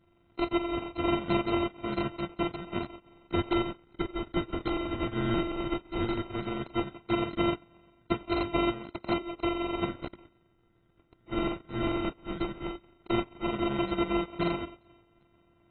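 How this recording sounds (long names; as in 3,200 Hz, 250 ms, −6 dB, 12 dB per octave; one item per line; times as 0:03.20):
a buzz of ramps at a fixed pitch in blocks of 128 samples
phaser sweep stages 12, 0.15 Hz, lowest notch 720–1,700 Hz
aliases and images of a low sample rate 1,700 Hz, jitter 0%
AAC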